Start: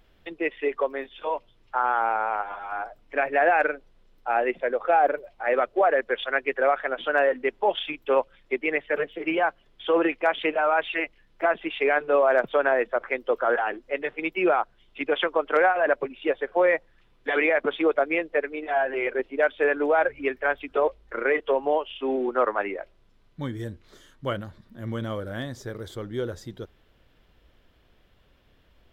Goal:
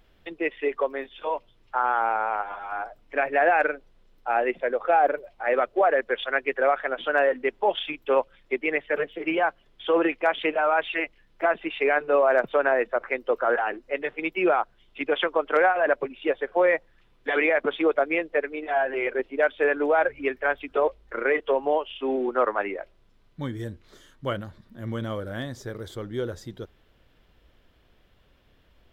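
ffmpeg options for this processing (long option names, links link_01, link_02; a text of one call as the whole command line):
ffmpeg -i in.wav -filter_complex "[0:a]asettb=1/sr,asplit=3[link_01][link_02][link_03];[link_01]atrim=end=11.554[link_04];[link_02]atrim=start=11.55:end=13.95,asetpts=PTS-STARTPTS,afade=type=in:duration=0.004:curve=qsin,afade=type=out:start_time=2.396:duration=0.004:curve=qsin,bandreject=frequency=3300:width=12[link_05];[link_03]atrim=start=13.946[link_06];[link_04][link_05]acrossfade=duration=0.004:curve1=hsin:curve2=qsin[link_07];[link_07][link_06]acrossfade=duration=0.004:curve1=qsin:curve2=hsin" out.wav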